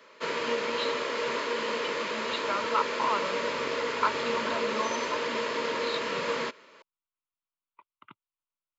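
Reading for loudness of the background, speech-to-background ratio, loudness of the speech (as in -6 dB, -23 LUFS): -30.5 LUFS, -4.5 dB, -35.0 LUFS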